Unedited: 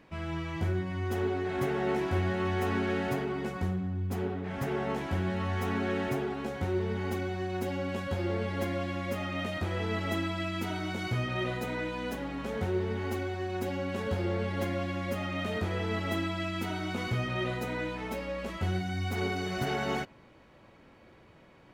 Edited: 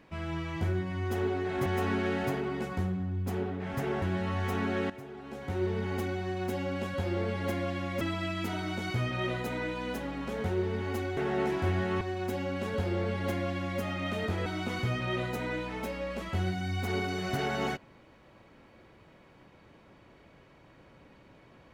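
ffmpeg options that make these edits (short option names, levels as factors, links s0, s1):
-filter_complex "[0:a]asplit=8[s0][s1][s2][s3][s4][s5][s6][s7];[s0]atrim=end=1.662[s8];[s1]atrim=start=2.498:end=4.862[s9];[s2]atrim=start=5.148:end=6.03,asetpts=PTS-STARTPTS,afade=t=out:st=0.878:d=0.004:c=hsin:silence=0.188365[s10];[s3]atrim=start=6.03:end=9.142,asetpts=PTS-STARTPTS,afade=t=in:d=0.73:c=qua:silence=0.188365[s11];[s4]atrim=start=10.178:end=13.342[s12];[s5]atrim=start=1.658:end=2.502[s13];[s6]atrim=start=13.338:end=15.792[s14];[s7]atrim=start=16.738[s15];[s8][s9]acrossfade=d=0.004:c1=hsin:c2=hsin[s16];[s10][s11]concat=n=2:v=0:a=1[s17];[s16][s17]acrossfade=d=0.004:c1=hsin:c2=hsin[s18];[s18][s12]acrossfade=d=0.004:c1=hsin:c2=hsin[s19];[s19][s13]acrossfade=d=0.004:c1=hsin:c2=hsin[s20];[s20][s14]acrossfade=d=0.004:c1=hsin:c2=hsin[s21];[s21][s15]acrossfade=d=0.004:c1=hsin:c2=hsin"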